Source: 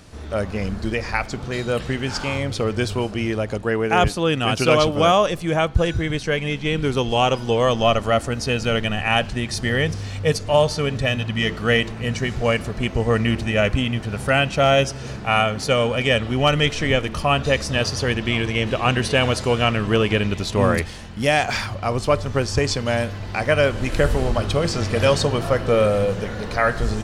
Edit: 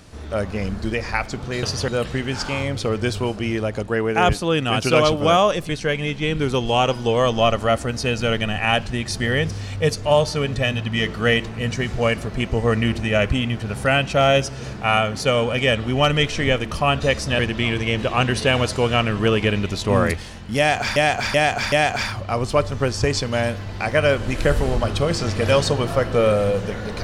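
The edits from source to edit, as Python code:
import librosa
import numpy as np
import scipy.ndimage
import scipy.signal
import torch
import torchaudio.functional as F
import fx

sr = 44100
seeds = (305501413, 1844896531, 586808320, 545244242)

y = fx.edit(x, sr, fx.cut(start_s=5.44, length_s=0.68),
    fx.move(start_s=17.82, length_s=0.25, to_s=1.63),
    fx.repeat(start_s=21.26, length_s=0.38, count=4), tone=tone)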